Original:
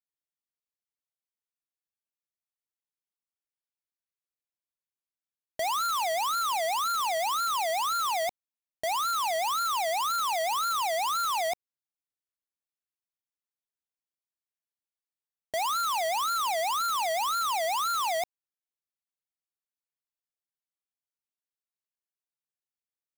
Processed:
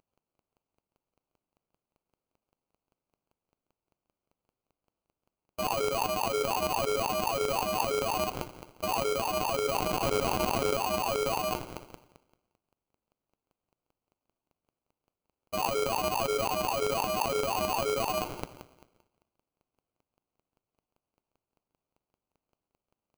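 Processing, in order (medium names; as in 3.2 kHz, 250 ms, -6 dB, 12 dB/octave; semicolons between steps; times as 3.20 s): feedback echo behind a high-pass 105 ms, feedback 54%, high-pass 4.1 kHz, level -10.5 dB; in parallel at +1 dB: compressor with a negative ratio -38 dBFS, ratio -0.5; 9.77–10.73 s: on the sum: treble shelf 2.3 kHz +11.5 dB; on a send at -16 dB: reverberation RT60 0.45 s, pre-delay 47 ms; on the sum: robot voice 125 Hz; treble shelf 12 kHz -4.5 dB; sample-rate reducer 1.8 kHz, jitter 0%; peak limiter -17 dBFS, peak gain reduction 12 dB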